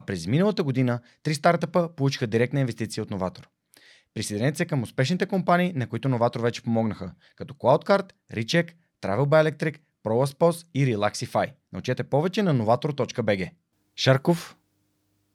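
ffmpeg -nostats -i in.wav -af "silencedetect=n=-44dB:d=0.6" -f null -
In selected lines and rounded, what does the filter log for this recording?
silence_start: 14.52
silence_end: 15.35 | silence_duration: 0.83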